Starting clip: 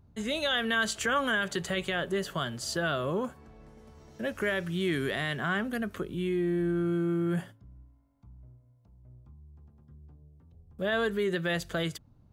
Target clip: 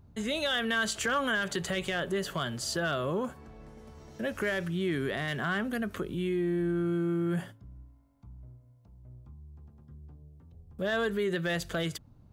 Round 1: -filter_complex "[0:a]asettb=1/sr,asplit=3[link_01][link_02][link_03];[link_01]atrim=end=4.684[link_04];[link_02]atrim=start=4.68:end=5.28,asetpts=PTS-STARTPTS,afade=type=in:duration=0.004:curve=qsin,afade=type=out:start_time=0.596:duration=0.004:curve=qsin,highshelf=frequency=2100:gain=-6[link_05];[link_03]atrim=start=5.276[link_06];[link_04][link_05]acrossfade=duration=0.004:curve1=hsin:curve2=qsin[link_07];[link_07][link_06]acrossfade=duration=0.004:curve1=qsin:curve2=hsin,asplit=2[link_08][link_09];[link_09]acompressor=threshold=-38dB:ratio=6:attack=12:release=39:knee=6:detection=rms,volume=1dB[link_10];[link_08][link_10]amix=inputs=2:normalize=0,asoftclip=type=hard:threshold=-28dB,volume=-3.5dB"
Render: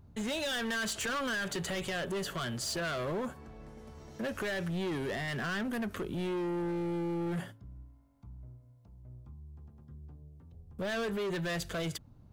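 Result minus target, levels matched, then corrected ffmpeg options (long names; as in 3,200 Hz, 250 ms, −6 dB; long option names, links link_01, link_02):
hard clipping: distortion +19 dB
-filter_complex "[0:a]asettb=1/sr,asplit=3[link_01][link_02][link_03];[link_01]atrim=end=4.684[link_04];[link_02]atrim=start=4.68:end=5.28,asetpts=PTS-STARTPTS,afade=type=in:duration=0.004:curve=qsin,afade=type=out:start_time=0.596:duration=0.004:curve=qsin,highshelf=frequency=2100:gain=-6[link_05];[link_03]atrim=start=5.276[link_06];[link_04][link_05]acrossfade=duration=0.004:curve1=hsin:curve2=qsin[link_07];[link_07][link_06]acrossfade=duration=0.004:curve1=qsin:curve2=hsin,asplit=2[link_08][link_09];[link_09]acompressor=threshold=-38dB:ratio=6:attack=12:release=39:knee=6:detection=rms,volume=1dB[link_10];[link_08][link_10]amix=inputs=2:normalize=0,asoftclip=type=hard:threshold=-18dB,volume=-3.5dB"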